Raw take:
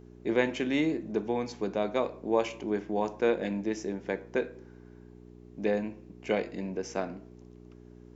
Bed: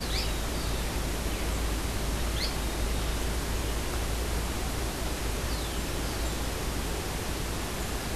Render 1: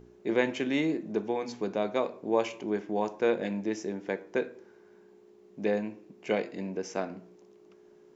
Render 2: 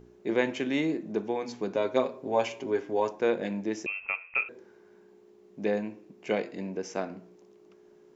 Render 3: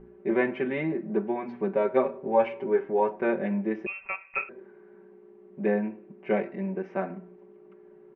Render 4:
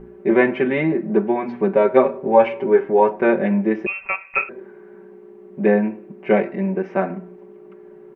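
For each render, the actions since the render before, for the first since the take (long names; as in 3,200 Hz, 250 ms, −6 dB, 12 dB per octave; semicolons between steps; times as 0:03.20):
hum removal 60 Hz, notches 5
0:01.74–0:03.11: comb filter 7.5 ms, depth 78%; 0:03.86–0:04.49: voice inversion scrambler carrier 2,900 Hz
low-pass filter 2,200 Hz 24 dB per octave; comb filter 5.2 ms, depth 96%
level +9.5 dB; brickwall limiter −1 dBFS, peak gain reduction 1 dB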